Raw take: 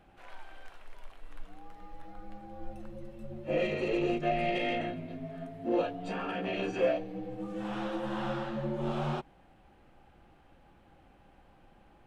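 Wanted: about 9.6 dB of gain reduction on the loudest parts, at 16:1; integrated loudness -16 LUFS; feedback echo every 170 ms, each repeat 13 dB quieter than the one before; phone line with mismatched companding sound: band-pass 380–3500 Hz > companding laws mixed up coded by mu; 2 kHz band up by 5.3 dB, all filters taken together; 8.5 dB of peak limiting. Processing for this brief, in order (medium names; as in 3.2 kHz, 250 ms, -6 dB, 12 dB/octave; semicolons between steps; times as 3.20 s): peaking EQ 2 kHz +7.5 dB; compression 16:1, threshold -32 dBFS; peak limiter -31.5 dBFS; band-pass 380–3500 Hz; feedback delay 170 ms, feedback 22%, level -13 dB; companding laws mixed up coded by mu; trim +24.5 dB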